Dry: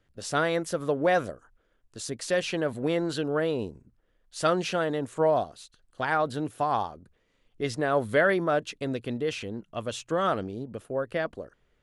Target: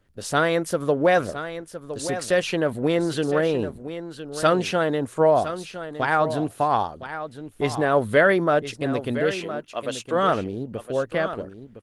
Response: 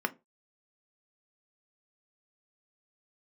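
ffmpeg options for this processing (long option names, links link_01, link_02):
-filter_complex "[0:a]asplit=3[link_01][link_02][link_03];[link_01]afade=type=out:start_time=9.33:duration=0.02[link_04];[link_02]highpass=350,afade=type=in:start_time=9.33:duration=0.02,afade=type=out:start_time=10.14:duration=0.02[link_05];[link_03]afade=type=in:start_time=10.14:duration=0.02[link_06];[link_04][link_05][link_06]amix=inputs=3:normalize=0,asplit=2[link_07][link_08];[link_08]aecho=0:1:1012:0.266[link_09];[link_07][link_09]amix=inputs=2:normalize=0,volume=5.5dB" -ar 48000 -c:a libopus -b:a 24k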